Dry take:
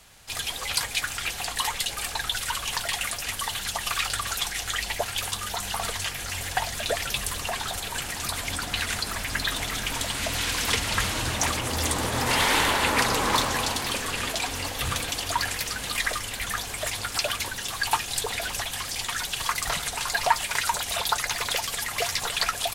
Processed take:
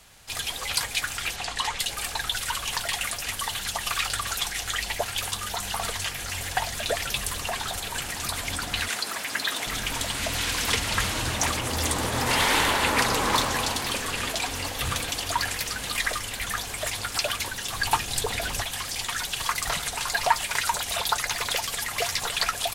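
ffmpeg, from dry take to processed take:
ffmpeg -i in.wav -filter_complex "[0:a]asettb=1/sr,asplit=3[link_01][link_02][link_03];[link_01]atrim=end=1.364[link_04];[link_02]atrim=start=1.36:end=1.79,asetpts=PTS-STARTPTS,afade=type=in:duration=0.004:curve=qsin,afade=type=out:start_time=0.426:duration=0.004:curve=qsin,lowpass=7100[link_05];[link_03]atrim=start=1.786[link_06];[link_04][link_05]acrossfade=duration=0.004:curve1=hsin:curve2=qsin[link_07];[link_07][link_06]acrossfade=duration=0.004:curve1=qsin:curve2=hsin,asettb=1/sr,asplit=3[link_08][link_09][link_10];[link_08]atrim=end=8.884[link_11];[link_09]atrim=start=8.88:end=9.67,asetpts=PTS-STARTPTS,afade=type=in:duration=0.004:curve=qsin,afade=type=out:start_time=0.786:duration=0.004:curve=qsin,highpass=270[link_12];[link_10]atrim=start=9.666[link_13];[link_11][link_12]acrossfade=duration=0.004:curve1=hsin:curve2=qsin[link_14];[link_14][link_13]acrossfade=duration=0.004:curve1=qsin:curve2=hsin,asettb=1/sr,asplit=3[link_15][link_16][link_17];[link_15]atrim=end=17.724[link_18];[link_16]atrim=start=17.72:end=18.63,asetpts=PTS-STARTPTS,afade=type=in:duration=0.004:curve=qsin,afade=type=out:start_time=0.906:duration=0.004:curve=qsin,lowshelf=frequency=400:gain=6.5[link_19];[link_17]atrim=start=18.626[link_20];[link_18][link_19]acrossfade=duration=0.004:curve1=hsin:curve2=qsin[link_21];[link_21][link_20]acrossfade=duration=0.004:curve1=qsin:curve2=hsin" out.wav

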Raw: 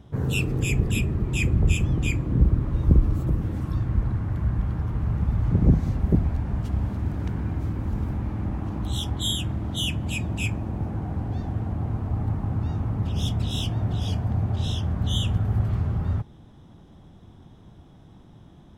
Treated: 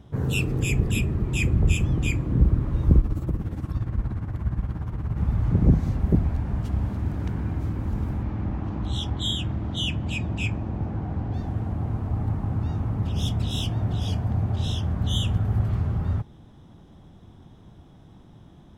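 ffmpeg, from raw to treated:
ffmpeg -i in.wav -filter_complex "[0:a]asettb=1/sr,asplit=3[link_01][link_02][link_03];[link_01]atrim=end=3.004[link_04];[link_02]atrim=start=3:end=5.17,asetpts=PTS-STARTPTS,afade=type=in:duration=0.004:curve=qsin,afade=type=out:start_time=2.166:duration=0.004:curve=qsin,tremolo=f=17:d=0.67[link_05];[link_03]atrim=start=5.166[link_06];[link_04][link_05]acrossfade=duration=0.004:curve1=hsin:curve2=qsin[link_07];[link_07][link_06]acrossfade=duration=0.004:curve1=qsin:curve2=hsin,asettb=1/sr,asplit=3[link_08][link_09][link_10];[link_08]atrim=end=8.234[link_11];[link_09]atrim=start=8.23:end=11.34,asetpts=PTS-STARTPTS,afade=type=in:duration=0.004:curve=qsin,afade=type=out:start_time=3.106:duration=0.004:curve=qsin,lowpass=5600[link_12];[link_10]atrim=start=11.336[link_13];[link_11][link_12]acrossfade=duration=0.004:curve1=hsin:curve2=qsin[link_14];[link_14][link_13]acrossfade=duration=0.004:curve1=qsin:curve2=hsin" out.wav

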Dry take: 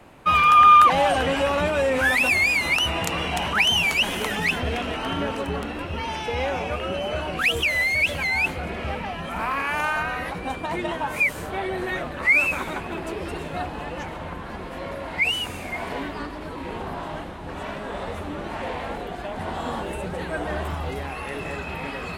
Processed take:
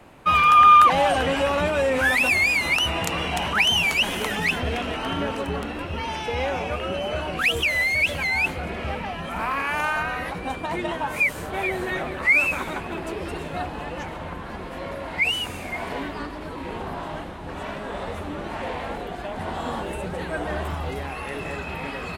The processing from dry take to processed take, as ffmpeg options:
ffmpeg -i in.wav -filter_complex "[0:a]asplit=2[link_01][link_02];[link_02]afade=type=in:start_time=11.1:duration=0.01,afade=type=out:start_time=11.74:duration=0.01,aecho=0:1:430|860:0.398107|0.0597161[link_03];[link_01][link_03]amix=inputs=2:normalize=0" out.wav

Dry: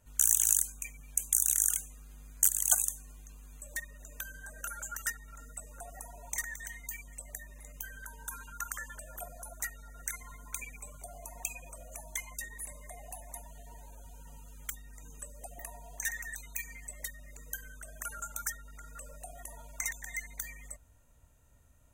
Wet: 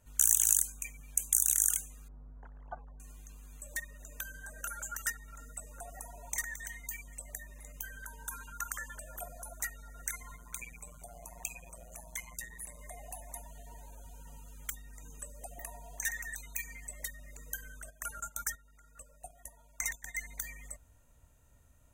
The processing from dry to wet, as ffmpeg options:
ffmpeg -i in.wav -filter_complex "[0:a]asettb=1/sr,asplit=3[link_01][link_02][link_03];[link_01]atrim=end=2.084[link_04];[link_02]atrim=start=2.08:end=3,asetpts=PTS-STARTPTS,afade=type=in:duration=0.004:curve=qsin,afade=type=out:start_time=0.916:duration=0.004:curve=qsin,lowpass=frequency=1100:width=0.5412,lowpass=frequency=1100:width=1.3066[link_05];[link_03]atrim=start=2.996[link_06];[link_04][link_05]acrossfade=duration=0.004:curve1=hsin:curve2=qsin[link_07];[link_07][link_06]acrossfade=duration=0.004:curve1=qsin:curve2=hsin,asettb=1/sr,asplit=3[link_08][link_09][link_10];[link_08]atrim=end=10.364[link_11];[link_09]atrim=start=10.36:end=12.79,asetpts=PTS-STARTPTS,afade=type=in:duration=0.004:curve=qsin,afade=type=out:start_time=2.426:duration=0.004:curve=qsin,tremolo=f=120:d=0.621[link_12];[link_10]atrim=start=12.786[link_13];[link_11][link_12]acrossfade=duration=0.004:curve1=hsin:curve2=qsin[link_14];[link_14][link_13]acrossfade=duration=0.004:curve1=qsin:curve2=hsin,asplit=3[link_15][link_16][link_17];[link_15]afade=type=out:start_time=17.89:duration=0.02[link_18];[link_16]agate=range=-12dB:threshold=-45dB:ratio=16:release=100:detection=peak,afade=type=in:start_time=17.89:duration=0.02,afade=type=out:start_time=20.22:duration=0.02[link_19];[link_17]afade=type=in:start_time=20.22:duration=0.02[link_20];[link_18][link_19][link_20]amix=inputs=3:normalize=0" out.wav

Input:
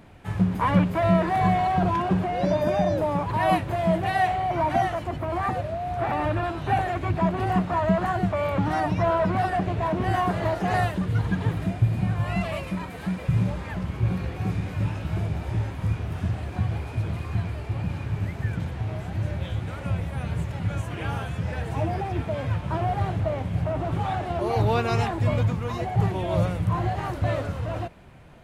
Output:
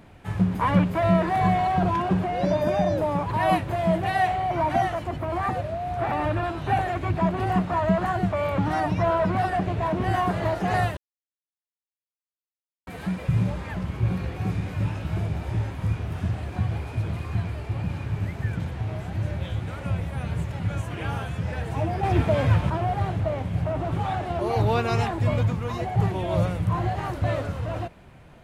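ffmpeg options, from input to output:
ffmpeg -i in.wav -filter_complex "[0:a]asettb=1/sr,asplit=3[link_01][link_02][link_03];[link_01]atrim=end=22.034[link_04];[link_02]atrim=start=22.03:end=22.7,asetpts=PTS-STARTPTS,afade=type=in:duration=0.004:curve=qsin,afade=type=out:start_time=0.666:duration=0.004:curve=qsin,acontrast=78[link_05];[link_03]atrim=start=22.696[link_06];[link_04][link_05]acrossfade=duration=0.004:curve1=hsin:curve2=qsin[link_07];[link_07][link_06]acrossfade=duration=0.004:curve1=qsin:curve2=hsin,asplit=3[link_08][link_09][link_10];[link_08]atrim=end=10.97,asetpts=PTS-STARTPTS,afade=type=out:start_time=10.966:duration=0.004:curve=hsin[link_11];[link_09]atrim=start=10.97:end=12.87,asetpts=PTS-STARTPTS,volume=0[link_12];[link_10]atrim=start=12.87,asetpts=PTS-STARTPTS,afade=type=in:duration=0.004:curve=hsin[link_13];[link_11][link_12][link_13]concat=n=3:v=0:a=1" out.wav

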